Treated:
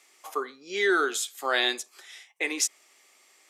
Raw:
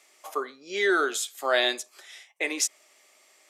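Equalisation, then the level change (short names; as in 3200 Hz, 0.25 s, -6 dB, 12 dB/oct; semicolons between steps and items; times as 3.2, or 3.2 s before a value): bell 610 Hz -10 dB 0.22 oct; 0.0 dB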